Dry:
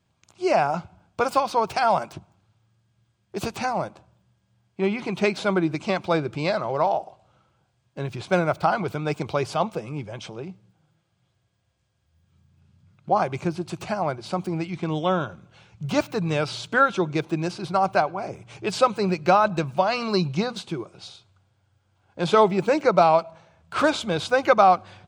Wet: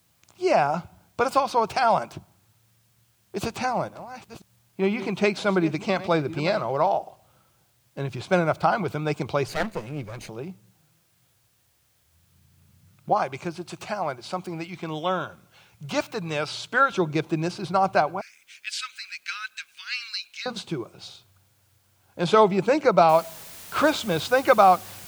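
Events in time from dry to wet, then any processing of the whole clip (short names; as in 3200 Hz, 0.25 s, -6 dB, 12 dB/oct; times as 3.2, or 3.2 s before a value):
3.38–6.63 reverse delay 0.52 s, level -14 dB
9.48–10.29 minimum comb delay 0.45 ms
13.13–16.92 low shelf 430 Hz -8.5 dB
18.21–20.46 steep high-pass 1600 Hz 48 dB/oct
23.09 noise floor step -67 dB -43 dB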